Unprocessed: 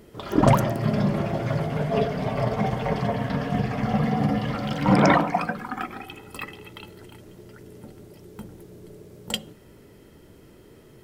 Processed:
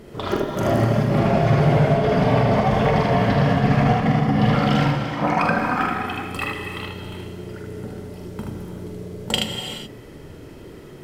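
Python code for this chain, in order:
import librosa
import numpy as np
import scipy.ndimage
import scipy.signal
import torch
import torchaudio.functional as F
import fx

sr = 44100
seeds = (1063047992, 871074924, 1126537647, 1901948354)

y = fx.high_shelf(x, sr, hz=8200.0, db=-9.0)
y = fx.over_compress(y, sr, threshold_db=-25.0, ratio=-0.5)
y = fx.echo_multitap(y, sr, ms=(44, 77), db=(-6.0, -3.5))
y = fx.rev_gated(y, sr, seeds[0], gate_ms=450, shape='flat', drr_db=4.0)
y = F.gain(torch.from_numpy(y), 4.0).numpy()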